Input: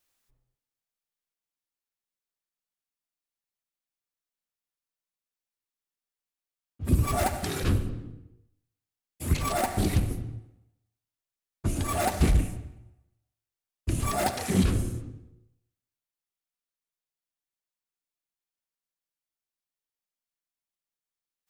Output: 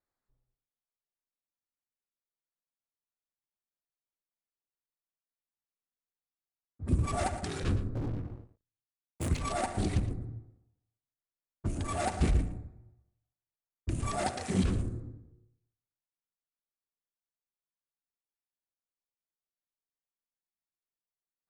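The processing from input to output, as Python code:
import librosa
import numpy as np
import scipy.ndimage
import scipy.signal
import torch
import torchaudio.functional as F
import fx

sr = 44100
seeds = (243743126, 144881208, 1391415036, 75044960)

y = fx.wiener(x, sr, points=15)
y = scipy.signal.sosfilt(scipy.signal.butter(12, 10000.0, 'lowpass', fs=sr, output='sos'), y)
y = fx.leveller(y, sr, passes=5, at=(7.95, 9.29))
y = y + 10.0 ** (-14.0 / 20.0) * np.pad(y, (int(114 * sr / 1000.0), 0))[:len(y)]
y = y * 10.0 ** (-5.0 / 20.0)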